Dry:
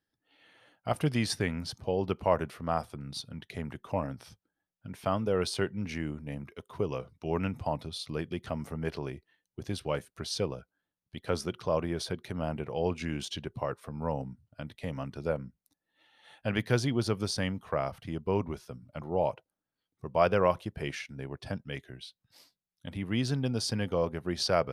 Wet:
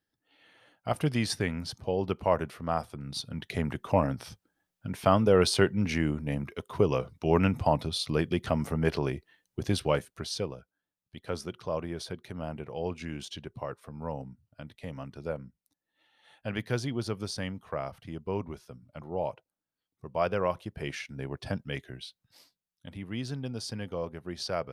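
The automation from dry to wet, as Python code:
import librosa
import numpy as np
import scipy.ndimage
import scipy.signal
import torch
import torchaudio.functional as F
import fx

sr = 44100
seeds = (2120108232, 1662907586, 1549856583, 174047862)

y = fx.gain(x, sr, db=fx.line((2.95, 0.5), (3.52, 7.0), (9.8, 7.0), (10.55, -3.5), (20.48, -3.5), (21.27, 3.0), (21.98, 3.0), (23.12, -5.5)))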